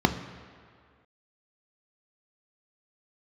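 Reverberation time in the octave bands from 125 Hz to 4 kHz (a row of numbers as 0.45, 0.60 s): 1.7, 1.8, 2.0, 2.2, 2.1, 1.6 s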